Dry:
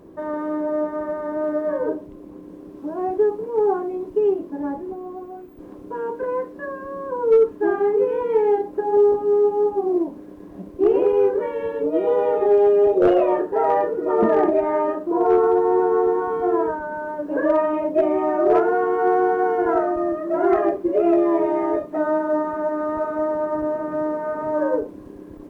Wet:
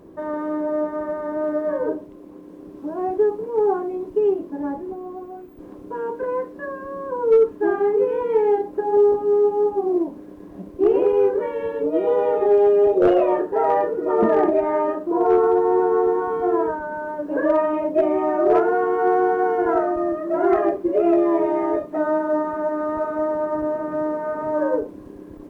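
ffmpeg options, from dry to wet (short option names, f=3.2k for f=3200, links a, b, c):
-filter_complex "[0:a]asettb=1/sr,asplit=3[a][b][c];[a]atrim=end=2.044[d];[b]atrim=start=2.04:end=2.59,asetpts=PTS-STARTPTS,afade=t=in:d=0.004:c=qsin,afade=t=out:st=0.546:d=0.004:c=qsin,lowshelf=f=150:g=-9[e];[c]atrim=start=2.586[f];[d][e]acrossfade=d=0.004:c1=hsin:c2=qsin[g];[g][f]acrossfade=d=0.004:c1=qsin:c2=hsin"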